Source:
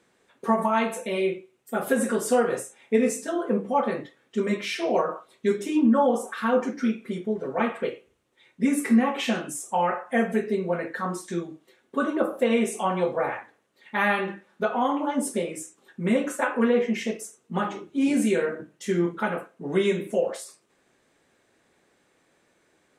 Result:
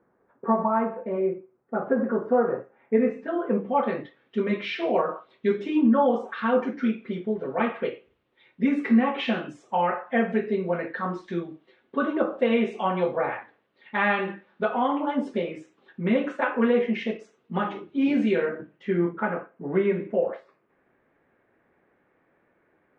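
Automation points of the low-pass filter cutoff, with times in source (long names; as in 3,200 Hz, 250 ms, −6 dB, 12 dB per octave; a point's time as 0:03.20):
low-pass filter 24 dB per octave
0:02.57 1,400 Hz
0:03.91 3,700 Hz
0:18.32 3,700 Hz
0:19.19 2,100 Hz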